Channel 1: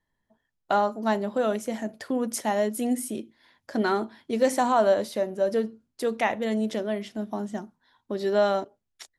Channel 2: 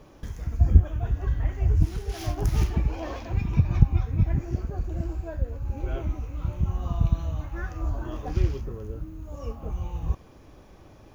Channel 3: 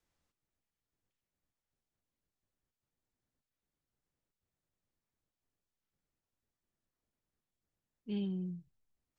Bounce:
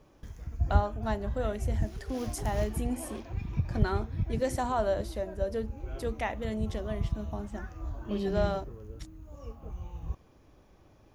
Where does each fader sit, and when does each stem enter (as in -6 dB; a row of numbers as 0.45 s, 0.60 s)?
-8.0 dB, -9.0 dB, +1.5 dB; 0.00 s, 0.00 s, 0.00 s